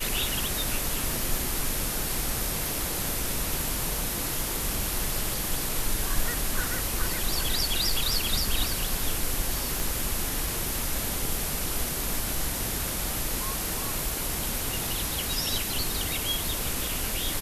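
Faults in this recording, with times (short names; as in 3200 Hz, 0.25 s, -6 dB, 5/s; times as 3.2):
9.8 pop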